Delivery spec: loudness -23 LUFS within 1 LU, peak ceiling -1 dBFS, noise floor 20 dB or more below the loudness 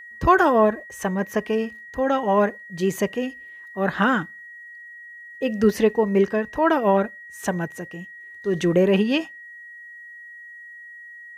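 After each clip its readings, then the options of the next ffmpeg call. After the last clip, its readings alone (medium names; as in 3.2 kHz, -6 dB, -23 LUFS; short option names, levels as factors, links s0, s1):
steady tone 1.9 kHz; tone level -39 dBFS; loudness -22.0 LUFS; peak level -4.5 dBFS; loudness target -23.0 LUFS
-> -af "bandreject=f=1900:w=30"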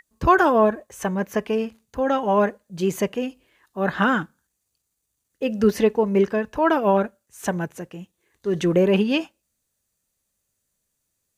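steady tone not found; loudness -22.0 LUFS; peak level -4.5 dBFS; loudness target -23.0 LUFS
-> -af "volume=0.891"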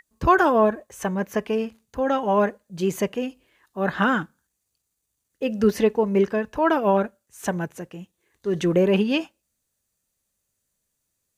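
loudness -23.0 LUFS; peak level -5.5 dBFS; noise floor -78 dBFS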